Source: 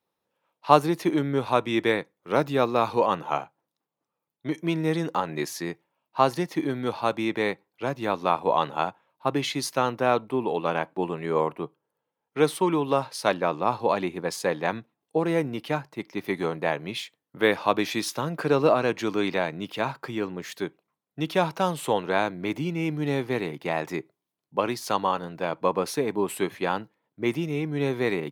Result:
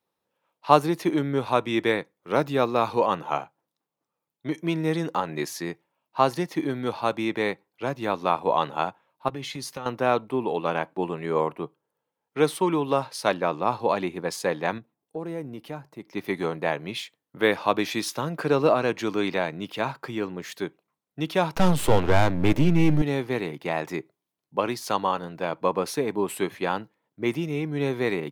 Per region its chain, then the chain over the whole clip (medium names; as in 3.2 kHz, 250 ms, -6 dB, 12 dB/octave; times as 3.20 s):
9.28–9.86 s: bass shelf 140 Hz +6.5 dB + compression, threshold -29 dBFS + comb of notches 330 Hz
14.78–16.11 s: peaking EQ 2.9 kHz -7 dB 3 oct + compression 1.5:1, threshold -42 dBFS
21.55–23.02 s: partial rectifier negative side -12 dB + bass shelf 300 Hz +10 dB + waveshaping leveller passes 2
whole clip: none